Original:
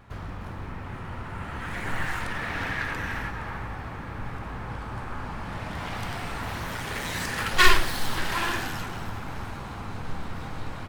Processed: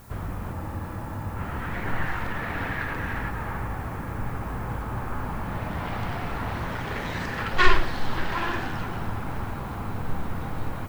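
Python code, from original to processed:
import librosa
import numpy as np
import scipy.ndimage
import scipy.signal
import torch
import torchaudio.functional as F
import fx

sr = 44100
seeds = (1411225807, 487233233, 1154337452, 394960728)

p1 = scipy.signal.sosfilt(scipy.signal.butter(2, 5500.0, 'lowpass', fs=sr, output='sos'), x)
p2 = fx.high_shelf(p1, sr, hz=2300.0, db=-10.5)
p3 = fx.rider(p2, sr, range_db=3, speed_s=0.5)
p4 = p2 + F.gain(torch.from_numpy(p3), -1.0).numpy()
p5 = fx.dmg_noise_colour(p4, sr, seeds[0], colour='blue', level_db=-53.0)
p6 = fx.spec_freeze(p5, sr, seeds[1], at_s=0.56, hold_s=0.79)
y = F.gain(torch.from_numpy(p6), -2.5).numpy()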